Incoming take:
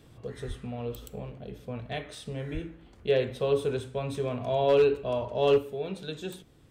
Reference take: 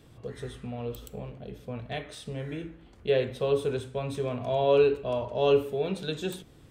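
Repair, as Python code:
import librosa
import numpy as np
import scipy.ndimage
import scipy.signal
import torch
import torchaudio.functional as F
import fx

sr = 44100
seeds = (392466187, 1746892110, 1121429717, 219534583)

y = fx.fix_declip(x, sr, threshold_db=-15.5)
y = fx.fix_deplosive(y, sr, at_s=(0.47, 2.53))
y = fx.fix_level(y, sr, at_s=5.58, step_db=4.5)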